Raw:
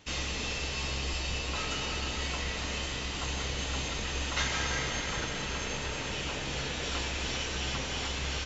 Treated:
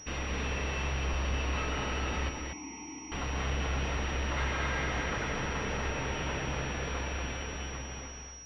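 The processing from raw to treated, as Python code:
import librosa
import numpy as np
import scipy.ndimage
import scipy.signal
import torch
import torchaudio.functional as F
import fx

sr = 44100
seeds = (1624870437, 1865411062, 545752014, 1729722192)

y = fx.fade_out_tail(x, sr, length_s=2.32)
y = fx.vowel_filter(y, sr, vowel='u', at=(2.29, 3.12))
y = 10.0 ** (-33.0 / 20.0) * np.tanh(y / 10.0 ** (-33.0 / 20.0))
y = y + 10.0 ** (-4.5 / 20.0) * np.pad(y, (int(239 * sr / 1000.0), 0))[:len(y)]
y = fx.pwm(y, sr, carrier_hz=5700.0)
y = y * librosa.db_to_amplitude(4.5)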